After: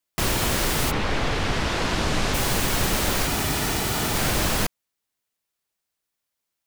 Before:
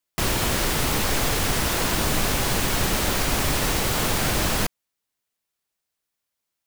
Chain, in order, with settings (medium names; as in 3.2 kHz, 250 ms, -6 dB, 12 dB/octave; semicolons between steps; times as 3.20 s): 0.90–2.33 s: low-pass 3.1 kHz -> 6.3 kHz 12 dB/octave; 3.27–4.15 s: comb of notches 540 Hz